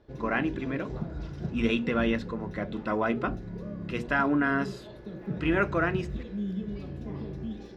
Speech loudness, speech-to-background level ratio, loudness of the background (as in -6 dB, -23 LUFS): -29.5 LUFS, 8.5 dB, -38.0 LUFS